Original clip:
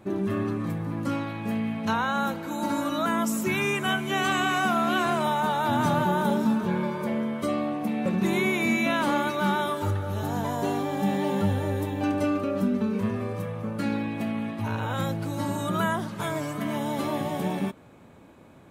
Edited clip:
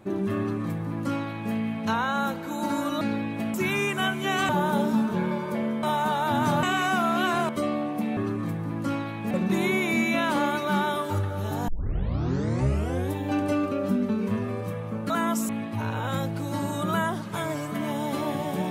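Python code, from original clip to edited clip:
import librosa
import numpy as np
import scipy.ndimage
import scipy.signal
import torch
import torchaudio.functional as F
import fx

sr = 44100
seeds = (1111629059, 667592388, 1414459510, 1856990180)

y = fx.edit(x, sr, fx.duplicate(start_s=0.38, length_s=1.14, to_s=8.03),
    fx.swap(start_s=3.01, length_s=0.39, other_s=13.82, other_length_s=0.53),
    fx.swap(start_s=4.35, length_s=0.86, other_s=6.01, other_length_s=1.34),
    fx.tape_start(start_s=10.4, length_s=1.44), tone=tone)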